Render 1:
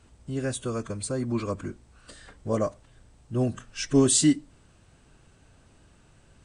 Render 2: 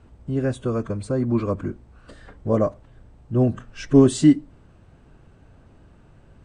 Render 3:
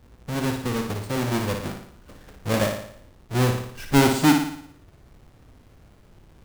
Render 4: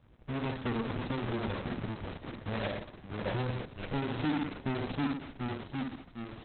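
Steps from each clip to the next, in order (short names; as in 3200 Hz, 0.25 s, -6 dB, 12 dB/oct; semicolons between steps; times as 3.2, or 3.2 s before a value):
LPF 1000 Hz 6 dB/oct; gain +7 dB
half-waves squared off; on a send: flutter echo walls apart 9.8 m, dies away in 0.65 s; on the sum: gain -7 dB
echoes that change speed 0.49 s, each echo -1 st, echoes 3, each echo -6 dB; limiter -19 dBFS, peak gain reduction 12 dB; gain -6 dB; Opus 6 kbps 48000 Hz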